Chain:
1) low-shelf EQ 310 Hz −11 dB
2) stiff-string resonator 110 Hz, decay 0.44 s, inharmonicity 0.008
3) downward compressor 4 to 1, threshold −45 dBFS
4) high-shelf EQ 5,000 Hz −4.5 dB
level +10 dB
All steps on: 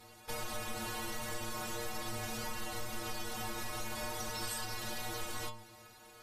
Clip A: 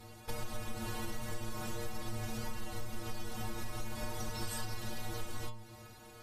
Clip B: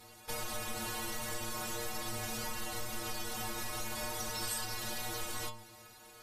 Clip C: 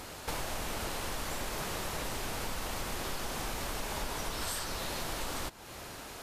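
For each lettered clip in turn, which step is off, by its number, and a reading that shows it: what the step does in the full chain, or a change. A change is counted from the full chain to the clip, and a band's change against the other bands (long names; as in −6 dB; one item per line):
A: 1, 125 Hz band +9.0 dB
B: 4, 8 kHz band +3.0 dB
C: 2, change in integrated loudness +3.0 LU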